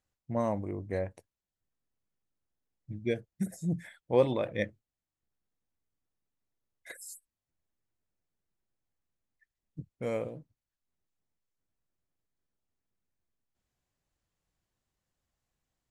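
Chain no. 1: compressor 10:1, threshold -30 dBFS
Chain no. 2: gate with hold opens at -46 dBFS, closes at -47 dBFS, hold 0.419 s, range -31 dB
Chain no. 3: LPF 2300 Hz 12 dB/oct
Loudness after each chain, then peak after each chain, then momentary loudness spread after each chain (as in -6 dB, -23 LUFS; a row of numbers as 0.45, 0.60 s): -39.0, -33.5, -33.5 LUFS; -19.5, -11.5, -11.5 dBFS; 13, 21, 22 LU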